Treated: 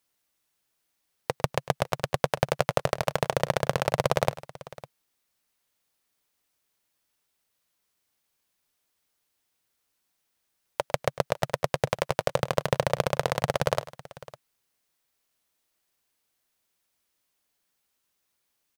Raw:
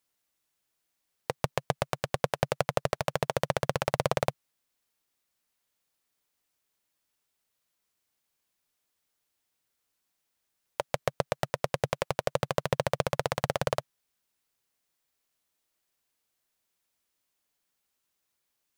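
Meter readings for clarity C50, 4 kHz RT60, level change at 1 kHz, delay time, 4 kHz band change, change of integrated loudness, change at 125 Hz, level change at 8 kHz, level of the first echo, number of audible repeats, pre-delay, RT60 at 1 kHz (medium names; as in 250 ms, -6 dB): no reverb, no reverb, +3.0 dB, 102 ms, +3.0 dB, +3.0 dB, +3.0 dB, +2.5 dB, -18.0 dB, 2, no reverb, no reverb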